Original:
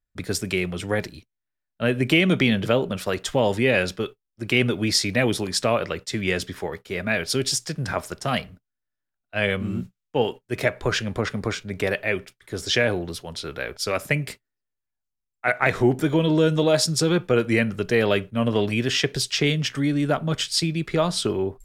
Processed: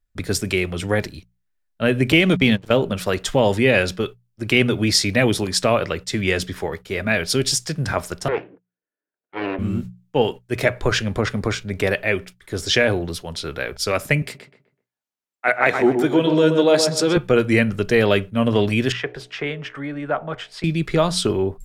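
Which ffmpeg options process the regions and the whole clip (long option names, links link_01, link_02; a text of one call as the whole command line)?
ffmpeg -i in.wav -filter_complex "[0:a]asettb=1/sr,asplit=3[link_01][link_02][link_03];[link_01]atrim=end=2.124[link_04];[link_02]atrim=start=2.12:end=2.77,asetpts=PTS-STARTPTS,afade=type=in:duration=0.004:curve=qsin,afade=type=out:start_time=0.646:duration=0.004:curve=qsin,agate=range=-18dB:threshold=-22dB:ratio=16:release=100:detection=peak,acompressor=mode=upward:threshold=-29dB:ratio=2.5:attack=3.2:release=140:knee=2.83:detection=peak,aeval=exprs='sgn(val(0))*max(abs(val(0))-0.00531,0)':channel_layout=same[link_05];[link_03]atrim=start=2.766[link_06];[link_04][link_05]acrossfade=duration=0.004:curve1=hsin:curve2=qsin[link_07];[link_07][link_06]acrossfade=duration=0.004:curve1=qsin:curve2=hsin,asettb=1/sr,asplit=3[link_08][link_09][link_10];[link_08]atrim=end=8.284[link_11];[link_09]atrim=start=8.28:end=9.59,asetpts=PTS-STARTPTS,afade=type=in:duration=0.004:curve=qsin,afade=type=out:start_time=1.306:duration=0.004:curve=qsin,aeval=exprs='abs(val(0))':channel_layout=same,highpass=frequency=180:width=0.5412,highpass=frequency=180:width=1.3066,equalizer=frequency=220:width_type=q:width=4:gain=-9,equalizer=frequency=310:width_type=q:width=4:gain=3,equalizer=frequency=450:width_type=q:width=4:gain=10,equalizer=frequency=820:width_type=q:width=4:gain=-4,equalizer=frequency=1200:width_type=q:width=4:gain=-7,equalizer=frequency=2000:width_type=q:width=4:gain=-4,lowpass=frequency=2200:width=0.5412,lowpass=frequency=2200:width=1.3066[link_12];[link_10]atrim=start=9.586[link_13];[link_11][link_12]acrossfade=duration=0.004:curve1=hsin:curve2=qsin[link_14];[link_14][link_13]acrossfade=duration=0.004:curve1=qsin:curve2=hsin,asettb=1/sr,asplit=3[link_15][link_16][link_17];[link_15]atrim=end=14.224[link_18];[link_16]atrim=start=14.22:end=17.17,asetpts=PTS-STARTPTS,afade=type=in:duration=0.004:curve=qsin,afade=type=out:start_time=2.946:duration=0.004:curve=qsin,highpass=240,highshelf=frequency=6200:gain=-5,asplit=2[link_19][link_20];[link_20]adelay=126,lowpass=frequency=1800:poles=1,volume=-5.5dB,asplit=2[link_21][link_22];[link_22]adelay=126,lowpass=frequency=1800:poles=1,volume=0.35,asplit=2[link_23][link_24];[link_24]adelay=126,lowpass=frequency=1800:poles=1,volume=0.35,asplit=2[link_25][link_26];[link_26]adelay=126,lowpass=frequency=1800:poles=1,volume=0.35[link_27];[link_19][link_21][link_23][link_25][link_27]amix=inputs=5:normalize=0,atrim=end_sample=130095[link_28];[link_17]atrim=start=17.166[link_29];[link_18][link_28]acrossfade=duration=0.004:curve1=hsin:curve2=qsin[link_30];[link_30][link_29]acrossfade=duration=0.004:curve1=qsin:curve2=hsin,asettb=1/sr,asplit=3[link_31][link_32][link_33];[link_31]atrim=end=18.924[link_34];[link_32]atrim=start=18.92:end=20.64,asetpts=PTS-STARTPTS,afade=type=in:duration=0.004:curve=qsin,afade=type=out:start_time=1.716:duration=0.004:curve=qsin,acrossover=split=470 2200:gain=0.2 1 0.0708[link_35][link_36][link_37];[link_35][link_36][link_37]amix=inputs=3:normalize=0,bandreject=frequency=61.26:width_type=h:width=4,bandreject=frequency=122.52:width_type=h:width=4,bandreject=frequency=183.78:width_type=h:width=4,bandreject=frequency=245.04:width_type=h:width=4,bandreject=frequency=306.3:width_type=h:width=4,bandreject=frequency=367.56:width_type=h:width=4,bandreject=frequency=428.82:width_type=h:width=4,bandreject=frequency=490.08:width_type=h:width=4,bandreject=frequency=551.34:width_type=h:width=4,bandreject=frequency=612.6:width_type=h:width=4,bandreject=frequency=673.86:width_type=h:width=4,bandreject=frequency=735.12:width_type=h:width=4,bandreject=frequency=796.38:width_type=h:width=4,bandreject=frequency=857.64:width_type=h:width=4,bandreject=frequency=918.9:width_type=h:width=4[link_38];[link_33]atrim=start=20.636[link_39];[link_34][link_38]acrossfade=duration=0.004:curve1=hsin:curve2=qsin[link_40];[link_40][link_39]acrossfade=duration=0.004:curve1=qsin:curve2=hsin,lowshelf=frequency=64:gain=8.5,bandreject=frequency=60:width_type=h:width=6,bandreject=frequency=120:width_type=h:width=6,bandreject=frequency=180:width_type=h:width=6,volume=3.5dB" out.wav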